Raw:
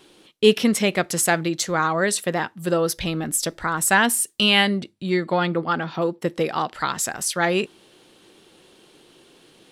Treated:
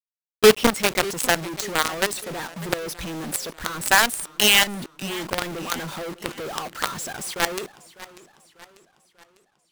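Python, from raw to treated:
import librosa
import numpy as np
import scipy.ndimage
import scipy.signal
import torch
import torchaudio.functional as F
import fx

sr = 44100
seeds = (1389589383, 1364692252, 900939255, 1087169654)

y = fx.envelope_sharpen(x, sr, power=1.5)
y = fx.quant_companded(y, sr, bits=2)
y = fx.echo_warbled(y, sr, ms=595, feedback_pct=49, rate_hz=2.8, cents=142, wet_db=-18)
y = y * 10.0 ** (-6.0 / 20.0)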